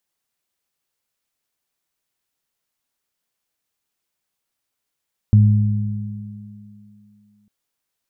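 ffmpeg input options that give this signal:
-f lavfi -i "aevalsrc='0.447*pow(10,-3*t/2.19)*sin(2*PI*106*t)+0.15*pow(10,-3*t/3.21)*sin(2*PI*207*t)':d=2.15:s=44100"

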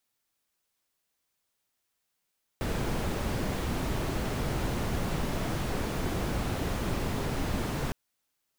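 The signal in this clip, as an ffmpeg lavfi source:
-f lavfi -i "anoisesrc=c=brown:a=0.148:d=5.31:r=44100:seed=1"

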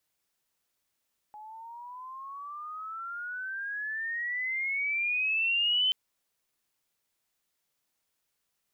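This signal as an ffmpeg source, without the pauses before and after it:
-f lavfi -i "aevalsrc='pow(10,(-22.5+20.5*(t/4.58-1))/20)*sin(2*PI*839*4.58/(22.5*log(2)/12)*(exp(22.5*log(2)/12*t/4.58)-1))':d=4.58:s=44100"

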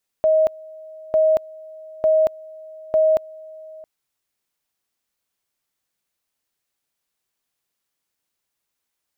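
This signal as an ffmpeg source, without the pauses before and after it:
-f lavfi -i "aevalsrc='pow(10,(-12.5-23.5*gte(mod(t,0.9),0.23))/20)*sin(2*PI*630*t)':d=3.6:s=44100"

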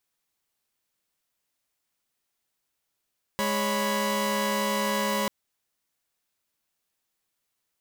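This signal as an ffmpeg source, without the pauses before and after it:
-f lavfi -i "aevalsrc='0.0473*((2*mod(207.65*t,1)-1)+(2*mod(554.37*t,1)-1)+(2*mod(987.77*t,1)-1))':d=1.89:s=44100"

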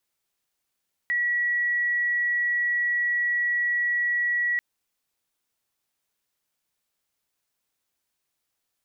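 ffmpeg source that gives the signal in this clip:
-f lavfi -i "sine=f=1930:d=3.49:r=44100,volume=-3.44dB"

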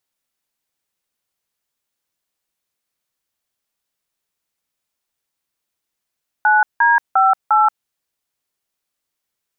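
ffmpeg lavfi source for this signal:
-f lavfi -i "aevalsrc='0.237*clip(min(mod(t,0.352),0.18-mod(t,0.352))/0.002,0,1)*(eq(floor(t/0.352),0)*(sin(2*PI*852*mod(t,0.352))+sin(2*PI*1477*mod(t,0.352)))+eq(floor(t/0.352),1)*(sin(2*PI*941*mod(t,0.352))+sin(2*PI*1633*mod(t,0.352)))+eq(floor(t/0.352),2)*(sin(2*PI*770*mod(t,0.352))+sin(2*PI*1336*mod(t,0.352)))+eq(floor(t/0.352),3)*(sin(2*PI*852*mod(t,0.352))+sin(2*PI*1336*mod(t,0.352))))':d=1.408:s=44100"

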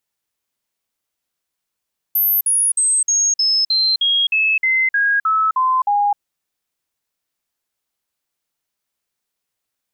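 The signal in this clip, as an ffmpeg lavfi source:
-f lavfi -i "aevalsrc='0.224*clip(min(mod(t,0.31),0.26-mod(t,0.31))/0.005,0,1)*sin(2*PI*13100*pow(2,-floor(t/0.31)/3)*mod(t,0.31))':d=4.03:s=44100"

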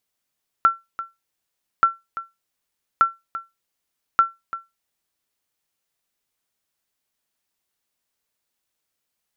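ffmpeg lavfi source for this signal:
-f lavfi -i "aevalsrc='0.473*(sin(2*PI*1350*mod(t,1.18))*exp(-6.91*mod(t,1.18)/0.2)+0.188*sin(2*PI*1350*max(mod(t,1.18)-0.34,0))*exp(-6.91*max(mod(t,1.18)-0.34,0)/0.2))':d=4.72:s=44100"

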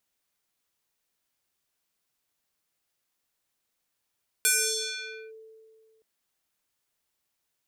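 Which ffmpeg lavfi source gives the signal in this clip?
-f lavfi -i "aevalsrc='0.119*pow(10,-3*t/2.11)*sin(2*PI*442*t+5.9*clip(1-t/0.87,0,1)*sin(2*PI*4.42*442*t))':d=1.57:s=44100"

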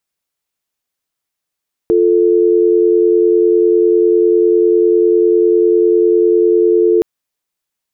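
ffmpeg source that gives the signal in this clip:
-f lavfi -i "aevalsrc='0.299*(sin(2*PI*350*t)+sin(2*PI*440*t))':d=5.12:s=44100"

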